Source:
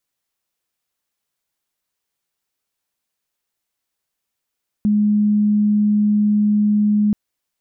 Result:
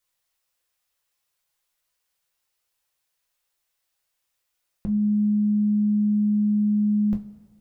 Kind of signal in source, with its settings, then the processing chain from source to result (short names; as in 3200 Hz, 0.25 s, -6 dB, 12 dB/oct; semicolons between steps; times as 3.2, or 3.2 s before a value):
tone sine 209 Hz -12.5 dBFS 2.28 s
bell 250 Hz -13 dB 1.1 oct; two-slope reverb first 0.24 s, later 1.8 s, from -18 dB, DRR 1 dB